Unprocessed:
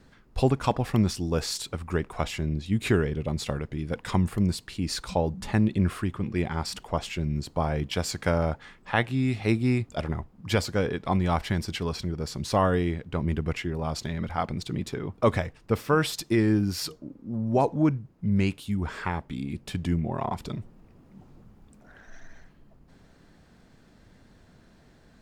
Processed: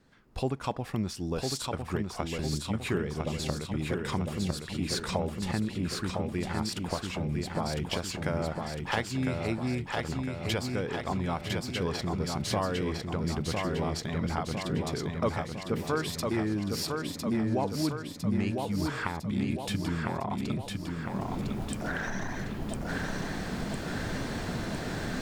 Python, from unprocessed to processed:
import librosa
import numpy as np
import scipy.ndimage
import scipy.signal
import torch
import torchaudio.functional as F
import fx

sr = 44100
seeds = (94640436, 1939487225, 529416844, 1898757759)

y = fx.recorder_agc(x, sr, target_db=-15.0, rise_db_per_s=24.0, max_gain_db=30)
y = fx.low_shelf(y, sr, hz=69.0, db=-8.5)
y = fx.echo_feedback(y, sr, ms=1005, feedback_pct=55, wet_db=-4)
y = F.gain(torch.from_numpy(y), -7.5).numpy()